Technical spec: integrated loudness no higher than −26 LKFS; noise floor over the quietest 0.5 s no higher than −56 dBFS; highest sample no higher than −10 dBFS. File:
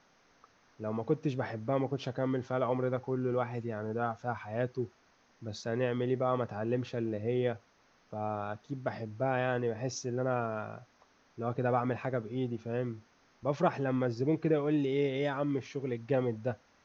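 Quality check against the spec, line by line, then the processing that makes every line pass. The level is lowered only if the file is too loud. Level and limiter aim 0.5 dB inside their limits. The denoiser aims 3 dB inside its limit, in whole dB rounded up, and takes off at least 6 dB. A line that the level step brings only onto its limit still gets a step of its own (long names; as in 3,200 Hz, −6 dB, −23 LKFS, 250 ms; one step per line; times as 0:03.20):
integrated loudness −33.5 LKFS: in spec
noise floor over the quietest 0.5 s −67 dBFS: in spec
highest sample −13.5 dBFS: in spec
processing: no processing needed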